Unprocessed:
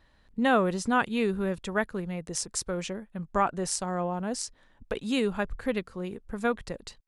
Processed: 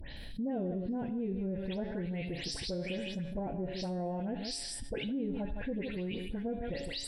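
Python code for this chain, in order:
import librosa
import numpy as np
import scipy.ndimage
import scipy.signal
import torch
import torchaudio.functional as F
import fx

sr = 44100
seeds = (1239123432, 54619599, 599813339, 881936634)

y = fx.spec_delay(x, sr, highs='late', ms=168)
y = fx.low_shelf(y, sr, hz=150.0, db=2.5)
y = fx.echo_multitap(y, sr, ms=(82, 160), db=(-19.0, -13.0))
y = fx.env_lowpass_down(y, sr, base_hz=540.0, full_db=-23.5)
y = fx.high_shelf(y, sr, hz=3200.0, db=10.5)
y = fx.fixed_phaser(y, sr, hz=2900.0, stages=4)
y = fx.comb_fb(y, sr, f0_hz=140.0, decay_s=0.74, harmonics='all', damping=0.0, mix_pct=70)
y = fx.env_flatten(y, sr, amount_pct=70)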